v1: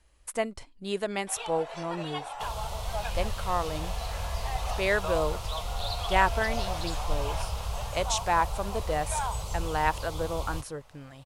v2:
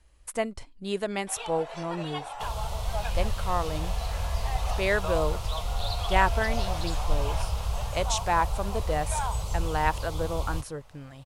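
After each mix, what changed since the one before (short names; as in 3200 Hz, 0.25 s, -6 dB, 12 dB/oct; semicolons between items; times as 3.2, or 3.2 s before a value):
master: add low shelf 200 Hz +4.5 dB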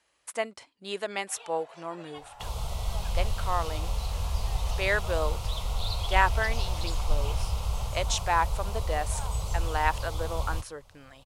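speech: add weighting filter A; first sound -10.5 dB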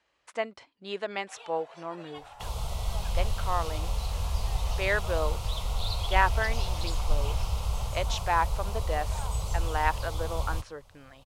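speech: add air absorption 120 m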